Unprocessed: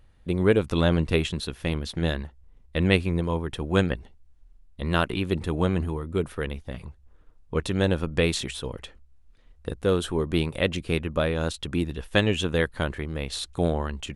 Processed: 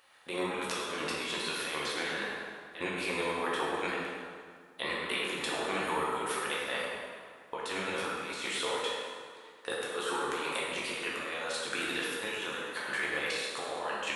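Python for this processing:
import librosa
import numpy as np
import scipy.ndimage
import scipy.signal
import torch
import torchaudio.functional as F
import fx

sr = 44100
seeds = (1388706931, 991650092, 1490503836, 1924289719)

y = scipy.signal.sosfilt(scipy.signal.butter(2, 900.0, 'highpass', fs=sr, output='sos'), x)
y = fx.over_compress(y, sr, threshold_db=-42.0, ratio=-1.0)
y = fx.echo_feedback(y, sr, ms=103, feedback_pct=60, wet_db=-11.0)
y = fx.rev_plate(y, sr, seeds[0], rt60_s=2.0, hf_ratio=0.6, predelay_ms=0, drr_db=-5.5)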